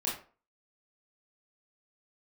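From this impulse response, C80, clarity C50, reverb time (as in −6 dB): 11.0 dB, 5.5 dB, 0.40 s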